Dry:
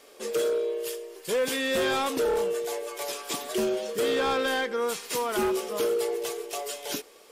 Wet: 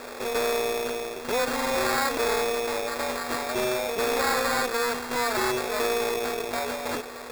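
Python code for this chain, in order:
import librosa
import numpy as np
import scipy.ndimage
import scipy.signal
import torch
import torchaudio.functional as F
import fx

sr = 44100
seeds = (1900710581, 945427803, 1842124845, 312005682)

y = np.r_[np.sort(x[:len(x) // 16 * 16].reshape(-1, 16), axis=1).ravel(), x[len(x) // 16 * 16:]]
y = scipy.signal.sosfilt(scipy.signal.butter(16, 7700.0, 'lowpass', fs=sr, output='sos'), y)
y = fx.peak_eq(y, sr, hz=1300.0, db=9.5, octaves=2.2)
y = fx.sample_hold(y, sr, seeds[0], rate_hz=3000.0, jitter_pct=0)
y = fx.peak_eq(y, sr, hz=210.0, db=-9.0, octaves=1.2)
y = fx.env_flatten(y, sr, amount_pct=50)
y = y * librosa.db_to_amplitude(-3.5)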